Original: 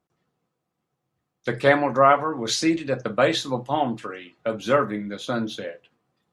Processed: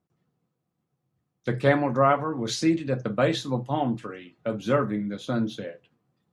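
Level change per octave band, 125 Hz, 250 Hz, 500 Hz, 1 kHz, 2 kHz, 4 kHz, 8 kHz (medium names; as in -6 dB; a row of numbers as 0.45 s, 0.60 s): +4.0 dB, 0.0 dB, -3.5 dB, -5.0 dB, -5.5 dB, -6.0 dB, -6.0 dB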